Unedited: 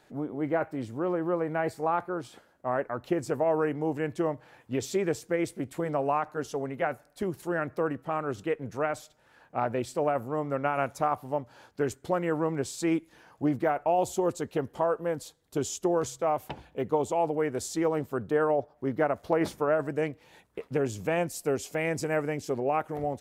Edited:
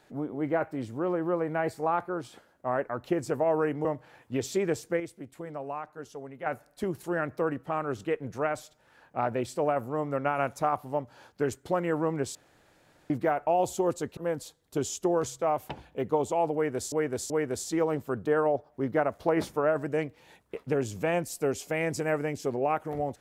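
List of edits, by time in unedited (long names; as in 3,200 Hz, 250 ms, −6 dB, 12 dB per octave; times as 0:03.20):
0:03.85–0:04.24: remove
0:05.39–0:06.85: clip gain −9 dB
0:12.74–0:13.49: fill with room tone
0:14.56–0:14.97: remove
0:17.34–0:17.72: repeat, 3 plays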